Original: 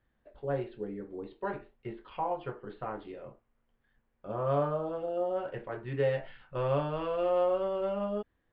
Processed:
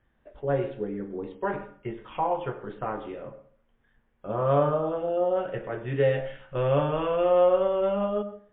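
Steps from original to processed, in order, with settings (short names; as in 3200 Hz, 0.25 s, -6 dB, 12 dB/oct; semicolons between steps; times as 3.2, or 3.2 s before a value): 5.41–6.77 dynamic EQ 1000 Hz, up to -6 dB, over -52 dBFS, Q 2.5; on a send at -13.5 dB: reverb RT60 0.50 s, pre-delay 93 ms; on the sum: gain +6.5 dB; MP3 24 kbps 8000 Hz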